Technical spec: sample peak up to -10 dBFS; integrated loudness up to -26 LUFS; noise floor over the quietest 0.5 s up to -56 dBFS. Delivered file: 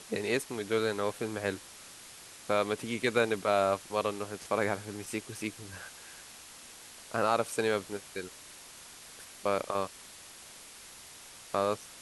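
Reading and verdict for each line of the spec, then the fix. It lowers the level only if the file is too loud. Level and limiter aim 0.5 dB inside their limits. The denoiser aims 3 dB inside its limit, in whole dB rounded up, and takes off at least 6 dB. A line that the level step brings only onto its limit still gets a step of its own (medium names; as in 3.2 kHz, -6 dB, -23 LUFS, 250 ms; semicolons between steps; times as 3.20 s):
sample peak -12.5 dBFS: pass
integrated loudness -32.0 LUFS: pass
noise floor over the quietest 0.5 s -50 dBFS: fail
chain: noise reduction 9 dB, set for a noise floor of -50 dBFS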